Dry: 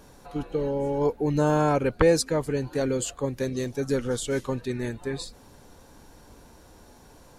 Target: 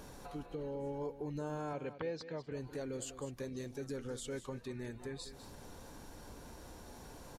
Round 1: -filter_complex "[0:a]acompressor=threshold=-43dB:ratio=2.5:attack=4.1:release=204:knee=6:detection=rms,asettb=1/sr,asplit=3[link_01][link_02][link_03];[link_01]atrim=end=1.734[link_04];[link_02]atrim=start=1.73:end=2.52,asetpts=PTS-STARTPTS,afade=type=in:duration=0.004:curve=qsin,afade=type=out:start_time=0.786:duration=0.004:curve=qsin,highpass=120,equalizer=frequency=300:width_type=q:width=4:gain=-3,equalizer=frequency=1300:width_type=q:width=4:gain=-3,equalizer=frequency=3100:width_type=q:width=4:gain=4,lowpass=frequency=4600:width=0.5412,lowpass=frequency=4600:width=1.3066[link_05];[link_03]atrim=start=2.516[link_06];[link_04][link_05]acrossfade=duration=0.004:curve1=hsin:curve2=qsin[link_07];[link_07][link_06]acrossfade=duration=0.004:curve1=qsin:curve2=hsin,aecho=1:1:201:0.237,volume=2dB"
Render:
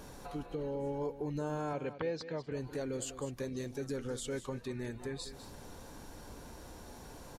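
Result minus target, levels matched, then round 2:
downward compressor: peak gain reduction −3.5 dB
-filter_complex "[0:a]acompressor=threshold=-49dB:ratio=2.5:attack=4.1:release=204:knee=6:detection=rms,asettb=1/sr,asplit=3[link_01][link_02][link_03];[link_01]atrim=end=1.734[link_04];[link_02]atrim=start=1.73:end=2.52,asetpts=PTS-STARTPTS,afade=type=in:duration=0.004:curve=qsin,afade=type=out:start_time=0.786:duration=0.004:curve=qsin,highpass=120,equalizer=frequency=300:width_type=q:width=4:gain=-3,equalizer=frequency=1300:width_type=q:width=4:gain=-3,equalizer=frequency=3100:width_type=q:width=4:gain=4,lowpass=frequency=4600:width=0.5412,lowpass=frequency=4600:width=1.3066[link_05];[link_03]atrim=start=2.516[link_06];[link_04][link_05]acrossfade=duration=0.004:curve1=hsin:curve2=qsin[link_07];[link_07][link_06]acrossfade=duration=0.004:curve1=qsin:curve2=hsin,aecho=1:1:201:0.237,volume=2dB"

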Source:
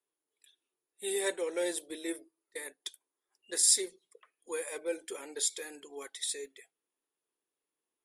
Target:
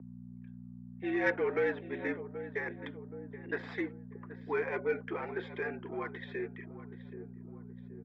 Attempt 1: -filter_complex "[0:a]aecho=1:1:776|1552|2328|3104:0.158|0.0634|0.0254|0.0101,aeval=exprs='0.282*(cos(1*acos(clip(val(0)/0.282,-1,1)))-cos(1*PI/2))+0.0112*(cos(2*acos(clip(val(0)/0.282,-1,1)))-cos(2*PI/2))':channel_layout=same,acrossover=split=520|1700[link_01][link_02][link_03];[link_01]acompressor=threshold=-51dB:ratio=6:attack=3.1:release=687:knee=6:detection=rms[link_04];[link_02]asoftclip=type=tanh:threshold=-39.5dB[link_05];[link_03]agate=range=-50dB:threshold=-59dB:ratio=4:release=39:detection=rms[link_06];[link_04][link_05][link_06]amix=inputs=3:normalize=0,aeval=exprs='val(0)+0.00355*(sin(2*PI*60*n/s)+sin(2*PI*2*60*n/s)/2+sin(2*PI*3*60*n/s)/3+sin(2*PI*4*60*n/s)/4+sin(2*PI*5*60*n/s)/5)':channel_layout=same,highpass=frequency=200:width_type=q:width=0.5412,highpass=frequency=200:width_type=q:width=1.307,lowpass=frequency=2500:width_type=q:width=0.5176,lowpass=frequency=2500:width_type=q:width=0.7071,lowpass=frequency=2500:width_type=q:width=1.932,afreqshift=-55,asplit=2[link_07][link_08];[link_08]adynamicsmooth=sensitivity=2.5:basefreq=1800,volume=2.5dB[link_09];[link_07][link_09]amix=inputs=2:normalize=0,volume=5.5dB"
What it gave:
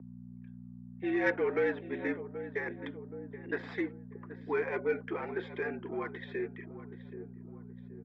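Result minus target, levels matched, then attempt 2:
downward compressor: peak gain reduction −6 dB
-filter_complex "[0:a]aecho=1:1:776|1552|2328|3104:0.158|0.0634|0.0254|0.0101,aeval=exprs='0.282*(cos(1*acos(clip(val(0)/0.282,-1,1)))-cos(1*PI/2))+0.0112*(cos(2*acos(clip(val(0)/0.282,-1,1)))-cos(2*PI/2))':channel_layout=same,acrossover=split=520|1700[link_01][link_02][link_03];[link_01]acompressor=threshold=-58.5dB:ratio=6:attack=3.1:release=687:knee=6:detection=rms[link_04];[link_02]asoftclip=type=tanh:threshold=-39.5dB[link_05];[link_03]agate=range=-50dB:threshold=-59dB:ratio=4:release=39:detection=rms[link_06];[link_04][link_05][link_06]amix=inputs=3:normalize=0,aeval=exprs='val(0)+0.00355*(sin(2*PI*60*n/s)+sin(2*PI*2*60*n/s)/2+sin(2*PI*3*60*n/s)/3+sin(2*PI*4*60*n/s)/4+sin(2*PI*5*60*n/s)/5)':channel_layout=same,highpass=frequency=200:width_type=q:width=0.5412,highpass=frequency=200:width_type=q:width=1.307,lowpass=frequency=2500:width_type=q:width=0.5176,lowpass=frequency=2500:width_type=q:width=0.7071,lowpass=frequency=2500:width_type=q:width=1.932,afreqshift=-55,asplit=2[link_07][link_08];[link_08]adynamicsmooth=sensitivity=2.5:basefreq=1800,volume=2.5dB[link_09];[link_07][link_09]amix=inputs=2:normalize=0,volume=5.5dB"

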